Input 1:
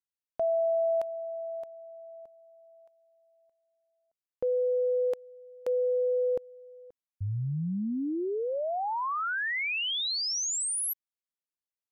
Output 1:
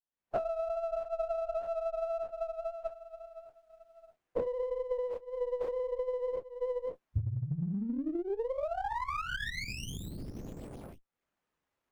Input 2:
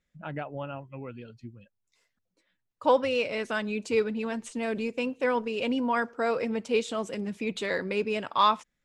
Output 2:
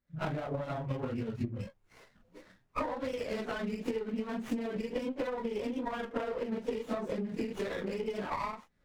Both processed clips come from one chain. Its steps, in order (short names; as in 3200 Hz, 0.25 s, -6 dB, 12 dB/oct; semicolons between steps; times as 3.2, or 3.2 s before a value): phase scrambler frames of 0.1 s; recorder AGC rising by 56 dB/s, up to +24 dB; LPF 2100 Hz 6 dB/oct; compressor, threshold -28 dBFS; transient shaper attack +5 dB, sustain -1 dB; running maximum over 9 samples; gain -5 dB